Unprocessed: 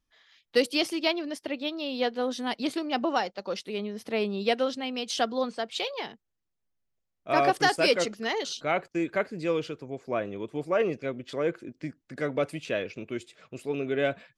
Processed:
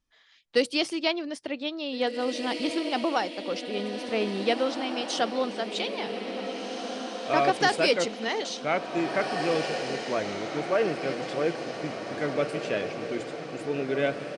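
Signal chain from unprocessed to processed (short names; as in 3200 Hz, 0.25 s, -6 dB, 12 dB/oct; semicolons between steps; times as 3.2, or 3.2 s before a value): notches 60/120 Hz; on a send: diffused feedback echo 1.852 s, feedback 55%, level -6.5 dB; on the sum: downsampling 22050 Hz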